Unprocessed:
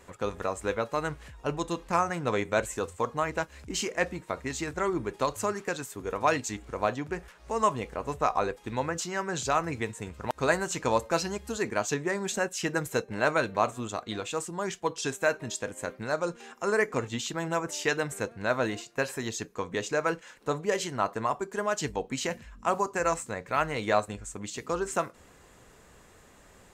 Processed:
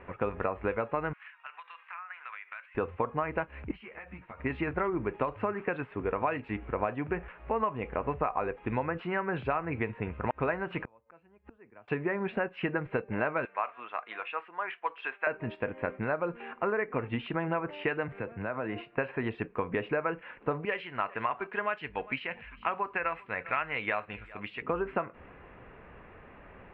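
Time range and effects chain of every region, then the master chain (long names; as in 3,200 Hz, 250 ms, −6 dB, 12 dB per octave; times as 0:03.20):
0:01.13–0:02.75: high-pass filter 1,300 Hz 24 dB per octave + downward compressor 10 to 1, threshold −43 dBFS
0:03.71–0:04.40: parametric band 340 Hz −12 dB 1.9 octaves + downward compressor 16 to 1, threshold −41 dBFS + string-ensemble chorus
0:10.83–0:11.88: gate with flip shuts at −29 dBFS, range −39 dB + Gaussian smoothing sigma 1.6 samples + multiband upward and downward compressor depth 70%
0:13.45–0:15.27: high-pass filter 1,100 Hz + high-shelf EQ 5,900 Hz −10 dB
0:18.08–0:18.93: downward compressor 8 to 1, threshold −34 dBFS + multiband upward and downward expander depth 40%
0:20.65–0:24.62: tilt shelving filter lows −10 dB, about 1,400 Hz + single-tap delay 399 ms −23.5 dB
whole clip: downward compressor 10 to 1, threshold −31 dBFS; elliptic low-pass filter 2,600 Hz, stop band 60 dB; level +5.5 dB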